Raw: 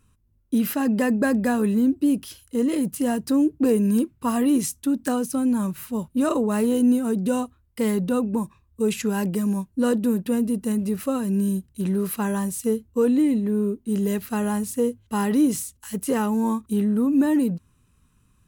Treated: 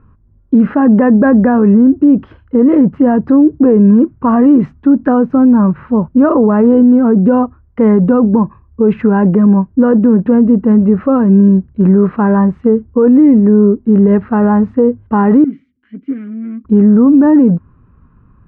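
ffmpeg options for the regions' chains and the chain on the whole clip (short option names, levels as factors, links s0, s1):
-filter_complex "[0:a]asettb=1/sr,asplit=3[s0][s1][s2];[s0]atrim=end=15.444[s3];[s1]atrim=start=15.44:end=16.65,asetpts=PTS-STARTPTS,afade=t=in:d=0.004:c=qsin,afade=t=out:st=1.206:d=0.004:c=qsin,volume=17.8,asoftclip=hard,volume=0.0562,asplit=3[s4][s5][s6];[s4]bandpass=f=270:t=q:w=8,volume=1[s7];[s5]bandpass=f=2290:t=q:w=8,volume=0.501[s8];[s6]bandpass=f=3010:t=q:w=8,volume=0.355[s9];[s7][s8][s9]amix=inputs=3:normalize=0,bass=f=250:g=-3,treble=f=4000:g=11[s10];[s2]atrim=start=16.646[s11];[s3][s10]acrossfade=d=0.004:c1=hsin:c2=qsin[s12];[s12][s11]acrossfade=d=0.004:c1=qsin:c2=hsin,lowpass=f=1500:w=0.5412,lowpass=f=1500:w=1.3066,alimiter=level_in=7.08:limit=0.891:release=50:level=0:latency=1,volume=0.891"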